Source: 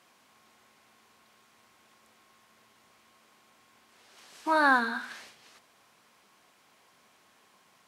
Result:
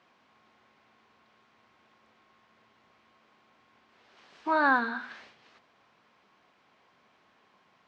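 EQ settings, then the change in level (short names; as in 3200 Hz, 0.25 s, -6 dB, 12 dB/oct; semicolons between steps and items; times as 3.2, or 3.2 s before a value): air absorption 200 m; 0.0 dB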